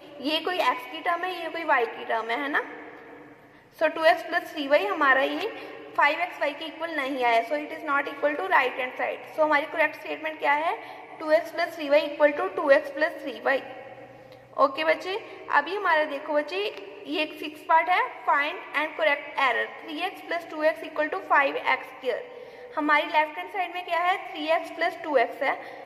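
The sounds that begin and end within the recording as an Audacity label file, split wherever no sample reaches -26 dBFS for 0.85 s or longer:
3.810000	13.590000	sound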